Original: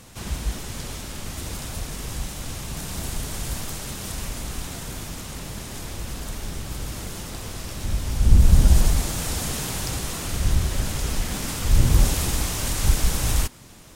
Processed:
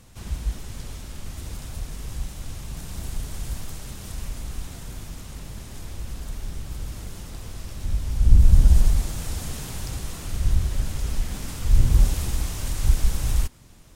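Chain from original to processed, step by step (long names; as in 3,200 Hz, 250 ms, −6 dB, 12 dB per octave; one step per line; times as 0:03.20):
low-shelf EQ 110 Hz +10.5 dB
level −8 dB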